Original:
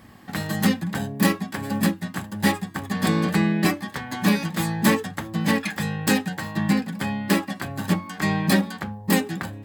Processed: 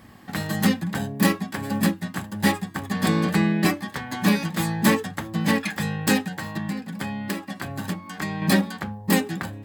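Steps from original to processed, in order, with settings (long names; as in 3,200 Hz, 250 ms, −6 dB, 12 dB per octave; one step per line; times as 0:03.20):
0:06.25–0:08.42: downward compressor 6 to 1, threshold −26 dBFS, peak gain reduction 11 dB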